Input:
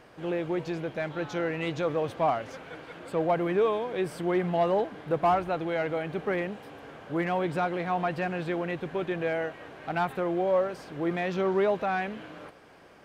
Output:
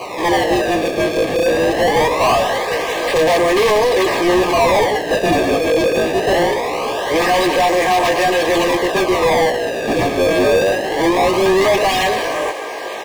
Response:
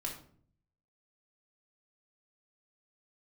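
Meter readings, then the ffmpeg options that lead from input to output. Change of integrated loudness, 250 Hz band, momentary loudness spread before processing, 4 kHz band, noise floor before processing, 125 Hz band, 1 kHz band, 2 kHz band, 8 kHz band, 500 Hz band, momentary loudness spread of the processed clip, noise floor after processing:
+14.0 dB, +12.0 dB, 11 LU, +23.5 dB, -53 dBFS, +7.5 dB, +14.0 dB, +16.5 dB, no reading, +14.0 dB, 5 LU, -25 dBFS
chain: -filter_complex "[0:a]lowshelf=f=270:t=q:w=1.5:g=-13,aexciter=amount=2.1:drive=9.8:freq=8100,aecho=1:1:137:0.15,asplit=2[s0][s1];[s1]aeval=exprs='(mod(10*val(0)+1,2)-1)/10':c=same,volume=0.668[s2];[s0][s2]amix=inputs=2:normalize=0,acrusher=samples=25:mix=1:aa=0.000001:lfo=1:lforange=40:lforate=0.22,flanger=delay=16:depth=3.3:speed=0.43,asplit=2[s3][s4];[s4]highpass=f=720:p=1,volume=28.2,asoftclip=type=tanh:threshold=0.188[s5];[s3][s5]amix=inputs=2:normalize=0,lowpass=f=3100:p=1,volume=0.501,asuperstop=centerf=1400:order=20:qfactor=4.5,volume=2.24"

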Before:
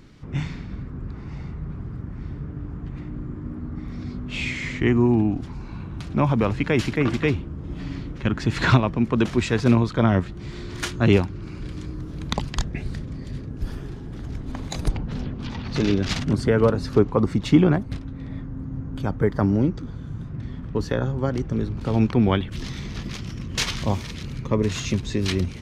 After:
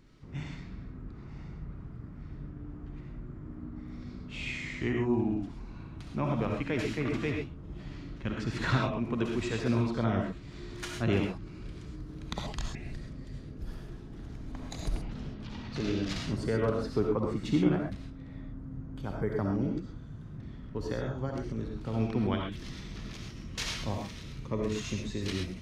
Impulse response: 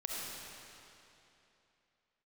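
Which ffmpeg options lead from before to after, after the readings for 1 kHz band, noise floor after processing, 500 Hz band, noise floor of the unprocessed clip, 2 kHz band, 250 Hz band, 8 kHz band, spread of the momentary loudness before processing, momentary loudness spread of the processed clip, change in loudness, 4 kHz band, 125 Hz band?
-9.5 dB, -45 dBFS, -9.0 dB, -36 dBFS, -9.0 dB, -9.5 dB, -9.0 dB, 15 LU, 15 LU, -9.5 dB, -9.0 dB, -10.5 dB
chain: -filter_complex "[1:a]atrim=start_sample=2205,atrim=end_sample=6174[s0];[0:a][s0]afir=irnorm=-1:irlink=0,volume=0.355"

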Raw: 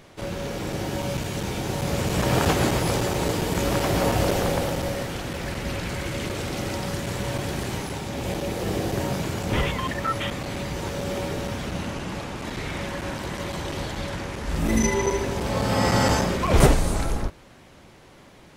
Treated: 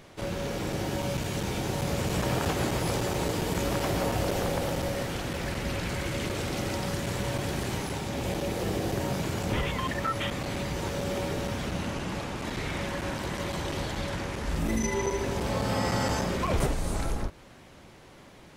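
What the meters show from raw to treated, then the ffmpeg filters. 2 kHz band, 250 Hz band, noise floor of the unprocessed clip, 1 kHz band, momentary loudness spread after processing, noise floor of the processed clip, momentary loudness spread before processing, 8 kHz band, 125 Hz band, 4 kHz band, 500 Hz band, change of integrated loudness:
-4.0 dB, -4.5 dB, -50 dBFS, -4.5 dB, 5 LU, -51 dBFS, 10 LU, -5.0 dB, -4.5 dB, -4.0 dB, -4.5 dB, -4.5 dB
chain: -af "acompressor=threshold=0.0631:ratio=3,volume=0.841"

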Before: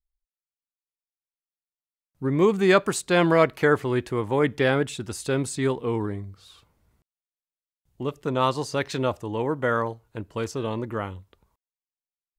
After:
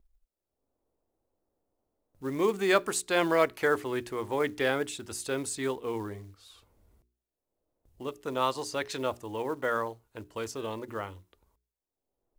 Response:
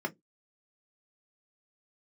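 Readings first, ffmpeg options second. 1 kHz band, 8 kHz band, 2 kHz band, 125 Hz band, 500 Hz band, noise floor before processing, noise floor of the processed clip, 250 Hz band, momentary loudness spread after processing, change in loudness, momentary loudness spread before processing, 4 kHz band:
-5.0 dB, -1.0 dB, -4.5 dB, -14.5 dB, -6.0 dB, under -85 dBFS, under -85 dBFS, -9.0 dB, 14 LU, -6.5 dB, 13 LU, -3.5 dB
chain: -filter_complex "[0:a]bandreject=f=60:t=h:w=6,bandreject=f=120:t=h:w=6,bandreject=f=180:t=h:w=6,bandreject=f=240:t=h:w=6,bandreject=f=300:t=h:w=6,bandreject=f=360:t=h:w=6,bandreject=f=420:t=h:w=6,acrossover=split=660[s0][s1];[s0]acompressor=mode=upward:threshold=0.00631:ratio=2.5[s2];[s2][s1]amix=inputs=2:normalize=0,highshelf=f=6400:g=6,acrusher=bits=7:mode=log:mix=0:aa=0.000001,equalizer=f=150:t=o:w=1.1:g=-10.5,volume=0.562"

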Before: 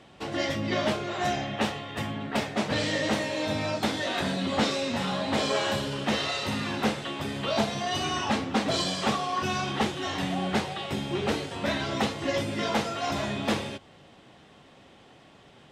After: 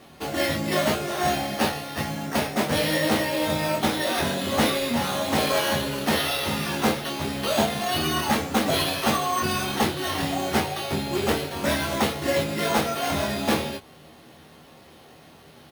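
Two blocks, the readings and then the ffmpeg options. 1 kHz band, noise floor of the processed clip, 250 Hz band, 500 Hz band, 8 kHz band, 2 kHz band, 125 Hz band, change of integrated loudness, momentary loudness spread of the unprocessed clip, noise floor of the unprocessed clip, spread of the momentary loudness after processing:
+4.0 dB, -50 dBFS, +3.0 dB, +4.5 dB, +7.5 dB, +4.0 dB, +3.0 dB, +4.0 dB, 4 LU, -54 dBFS, 4 LU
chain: -af "acrusher=samples=6:mix=1:aa=0.000001,aecho=1:1:13|25:0.473|0.562,volume=1.33"

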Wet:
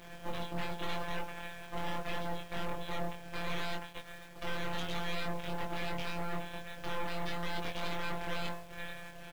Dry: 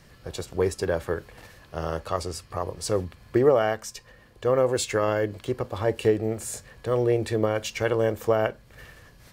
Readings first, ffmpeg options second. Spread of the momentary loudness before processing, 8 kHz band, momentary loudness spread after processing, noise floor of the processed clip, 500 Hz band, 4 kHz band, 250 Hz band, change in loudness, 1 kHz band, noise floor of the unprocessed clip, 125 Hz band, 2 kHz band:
11 LU, -17.0 dB, 7 LU, -49 dBFS, -19.0 dB, -3.5 dB, -12.0 dB, -13.5 dB, -7.0 dB, -54 dBFS, -12.0 dB, -4.5 dB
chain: -filter_complex "[0:a]bandreject=f=60:t=h:w=6,bandreject=f=120:t=h:w=6,bandreject=f=180:t=h:w=6,bandreject=f=240:t=h:w=6,bandreject=f=300:t=h:w=6,bandreject=f=360:t=h:w=6,bandreject=f=420:t=h:w=6,bandreject=f=480:t=h:w=6,bandreject=f=540:t=h:w=6,bandreject=f=600:t=h:w=6,afftfilt=real='re*lt(hypot(re,im),0.178)':imag='im*lt(hypot(re,im),0.178)':win_size=1024:overlap=0.75,equalizer=f=110:t=o:w=0.33:g=-5,asplit=2[s0][s1];[s1]alimiter=limit=0.0631:level=0:latency=1:release=235,volume=1.06[s2];[s0][s2]amix=inputs=2:normalize=0,aeval=exprs='val(0)*sin(2*PI*270*n/s)':c=same,afftfilt=real='hypot(re,im)*cos(PI*b)':imag='0':win_size=1024:overlap=0.75,aresample=8000,aeval=exprs='abs(val(0))':c=same,aresample=44100,acrusher=bits=9:mix=0:aa=0.000001,asoftclip=type=hard:threshold=0.0299,asplit=2[s3][s4];[s4]adelay=22,volume=0.708[s5];[s3][s5]amix=inputs=2:normalize=0,volume=1.41"

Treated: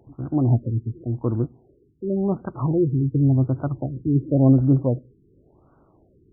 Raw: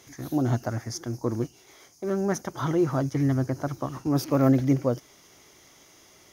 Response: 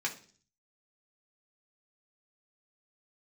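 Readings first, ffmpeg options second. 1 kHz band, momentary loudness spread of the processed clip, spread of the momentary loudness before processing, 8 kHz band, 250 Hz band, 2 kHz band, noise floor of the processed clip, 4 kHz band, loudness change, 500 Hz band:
-3.0 dB, 11 LU, 11 LU, under -40 dB, +4.0 dB, under -10 dB, -59 dBFS, under -40 dB, +4.5 dB, +1.0 dB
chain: -filter_complex "[0:a]lowshelf=f=220:g=11.5,asplit=2[s0][s1];[1:a]atrim=start_sample=2205[s2];[s1][s2]afir=irnorm=-1:irlink=0,volume=0.0891[s3];[s0][s3]amix=inputs=2:normalize=0,afftfilt=real='re*lt(b*sr/1024,440*pow(1600/440,0.5+0.5*sin(2*PI*0.91*pts/sr)))':imag='im*lt(b*sr/1024,440*pow(1600/440,0.5+0.5*sin(2*PI*0.91*pts/sr)))':win_size=1024:overlap=0.75,volume=0.841"

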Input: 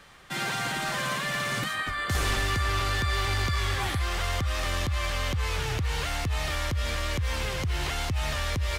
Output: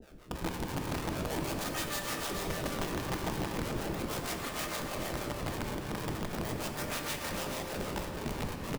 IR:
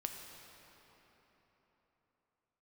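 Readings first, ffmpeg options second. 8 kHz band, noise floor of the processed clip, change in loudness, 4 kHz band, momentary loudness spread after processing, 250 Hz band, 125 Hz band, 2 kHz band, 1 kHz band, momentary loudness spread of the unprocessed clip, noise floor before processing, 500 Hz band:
-4.5 dB, -41 dBFS, -7.5 dB, -9.5 dB, 3 LU, +2.0 dB, -10.0 dB, -10.5 dB, -7.0 dB, 3 LU, -32 dBFS, -1.5 dB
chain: -filter_complex "[0:a]highpass=370,equalizer=f=9900:t=o:w=0.39:g=10.5,alimiter=limit=0.0668:level=0:latency=1:release=44,acontrast=82,aeval=exprs='val(0)+0.00398*sin(2*PI*890*n/s)':c=same,acrusher=samples=38:mix=1:aa=0.000001:lfo=1:lforange=60.8:lforate=0.39,asoftclip=type=tanh:threshold=0.0841,acrossover=split=470[s0][s1];[s0]aeval=exprs='val(0)*(1-1/2+1/2*cos(2*PI*6.4*n/s))':c=same[s2];[s1]aeval=exprs='val(0)*(1-1/2-1/2*cos(2*PI*6.4*n/s))':c=same[s3];[s2][s3]amix=inputs=2:normalize=0,aeval=exprs='(mod(16.8*val(0)+1,2)-1)/16.8':c=same,aecho=1:1:428:0.422[s4];[1:a]atrim=start_sample=2205[s5];[s4][s5]afir=irnorm=-1:irlink=0,volume=0.794"

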